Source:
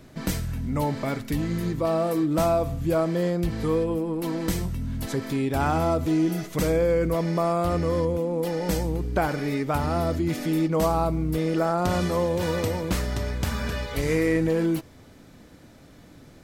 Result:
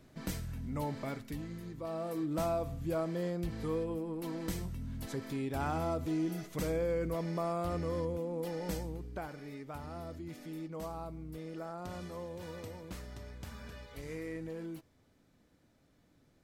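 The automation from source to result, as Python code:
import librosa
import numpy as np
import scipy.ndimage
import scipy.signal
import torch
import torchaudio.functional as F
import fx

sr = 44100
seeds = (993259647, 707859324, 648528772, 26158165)

y = fx.gain(x, sr, db=fx.line((1.08, -11.0), (1.66, -18.0), (2.29, -11.0), (8.66, -11.0), (9.32, -19.0)))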